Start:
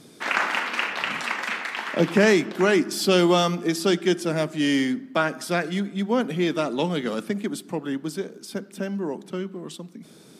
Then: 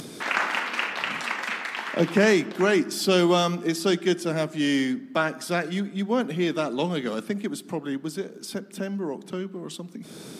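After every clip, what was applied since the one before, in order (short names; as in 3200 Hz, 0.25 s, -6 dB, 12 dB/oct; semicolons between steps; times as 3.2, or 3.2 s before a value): upward compressor, threshold -28 dBFS; gain -1.5 dB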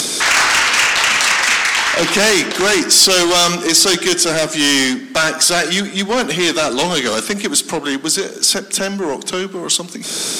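overdrive pedal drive 26 dB, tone 7900 Hz, clips at -6.5 dBFS; bell 7300 Hz +12.5 dB 1.9 oct; gain -1.5 dB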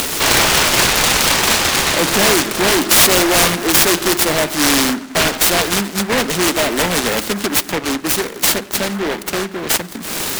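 noise-modulated delay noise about 1200 Hz, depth 0.19 ms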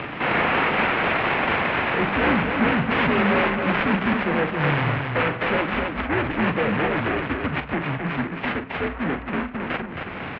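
mistuned SSB -140 Hz 240–2700 Hz; loudspeakers at several distances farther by 14 m -10 dB, 92 m -5 dB; gain -5.5 dB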